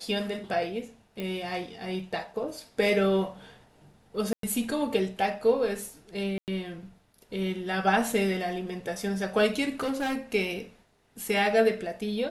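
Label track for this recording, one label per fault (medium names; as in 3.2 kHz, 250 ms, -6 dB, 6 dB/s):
1.200000	1.200000	pop -21 dBFS
4.330000	4.430000	dropout 103 ms
6.380000	6.480000	dropout 98 ms
9.800000	10.180000	clipped -26 dBFS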